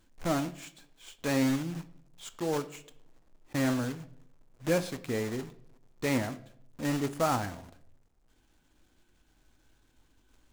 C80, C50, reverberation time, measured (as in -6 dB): 20.0 dB, 16.5 dB, 0.70 s